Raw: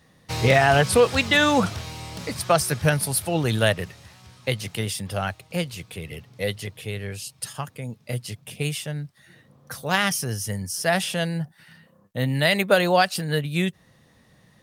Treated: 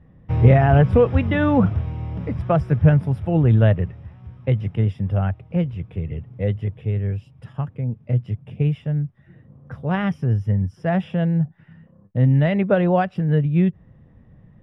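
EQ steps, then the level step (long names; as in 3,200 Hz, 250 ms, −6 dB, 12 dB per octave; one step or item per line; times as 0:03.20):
Savitzky-Golay smoothing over 25 samples
spectral tilt −4.5 dB per octave
−3.5 dB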